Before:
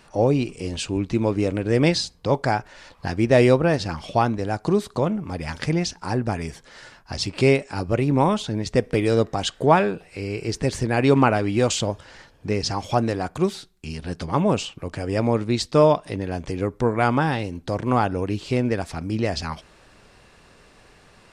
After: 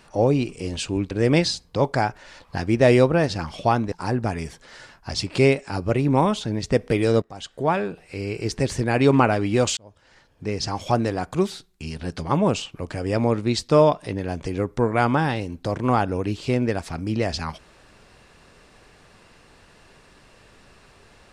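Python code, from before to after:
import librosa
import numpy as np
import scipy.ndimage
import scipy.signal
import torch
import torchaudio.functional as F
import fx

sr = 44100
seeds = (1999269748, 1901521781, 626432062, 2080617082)

y = fx.edit(x, sr, fx.cut(start_s=1.11, length_s=0.5),
    fx.cut(start_s=4.42, length_s=1.53),
    fx.fade_in_from(start_s=9.25, length_s=1.01, floor_db=-18.5),
    fx.fade_in_span(start_s=11.8, length_s=1.07), tone=tone)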